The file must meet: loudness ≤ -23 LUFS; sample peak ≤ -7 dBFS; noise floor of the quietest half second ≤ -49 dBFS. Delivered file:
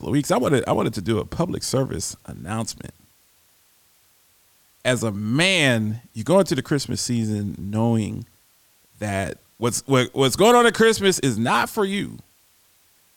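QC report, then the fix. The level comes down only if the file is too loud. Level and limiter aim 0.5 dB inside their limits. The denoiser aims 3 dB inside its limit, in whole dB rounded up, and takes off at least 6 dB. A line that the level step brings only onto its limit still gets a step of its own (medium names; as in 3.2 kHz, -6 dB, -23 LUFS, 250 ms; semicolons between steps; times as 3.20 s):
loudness -21.0 LUFS: fail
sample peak -5.0 dBFS: fail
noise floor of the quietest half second -59 dBFS: pass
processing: trim -2.5 dB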